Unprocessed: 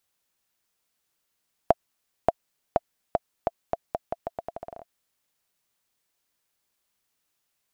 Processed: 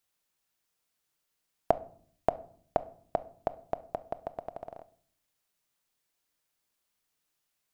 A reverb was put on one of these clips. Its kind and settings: simulated room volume 690 m³, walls furnished, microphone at 0.49 m; trim -3.5 dB

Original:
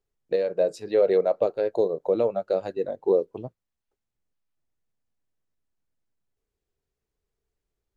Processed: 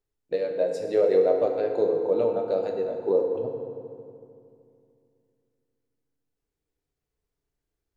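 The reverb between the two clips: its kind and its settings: FDN reverb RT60 2.5 s, low-frequency decay 1.3×, high-frequency decay 0.6×, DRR 2 dB; trim -3 dB

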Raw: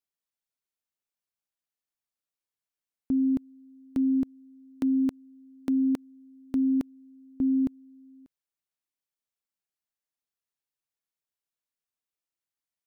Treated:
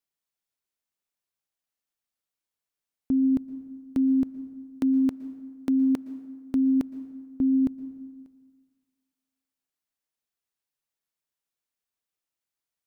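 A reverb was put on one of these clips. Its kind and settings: plate-style reverb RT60 1.6 s, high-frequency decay 0.55×, pre-delay 105 ms, DRR 15 dB; trim +2 dB

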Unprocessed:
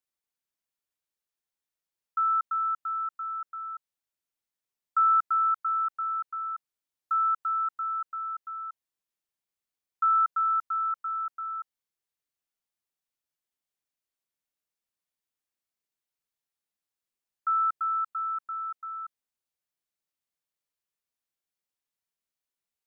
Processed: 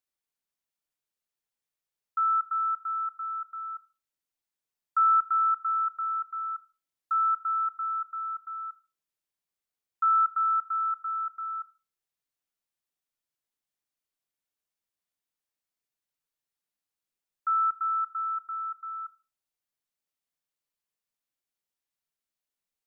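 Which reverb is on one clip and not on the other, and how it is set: simulated room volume 290 m³, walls furnished, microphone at 0.39 m; trim -1 dB

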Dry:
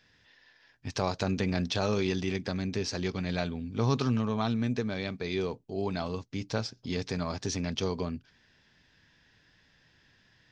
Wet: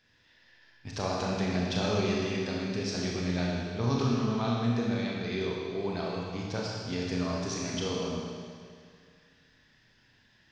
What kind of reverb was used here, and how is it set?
Schroeder reverb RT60 2.1 s, combs from 26 ms, DRR -3.5 dB; trim -4.5 dB

